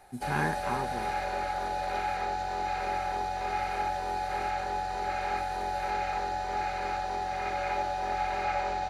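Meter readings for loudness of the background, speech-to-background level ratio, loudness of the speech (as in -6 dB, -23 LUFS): -32.0 LUFS, -3.0 dB, -35.0 LUFS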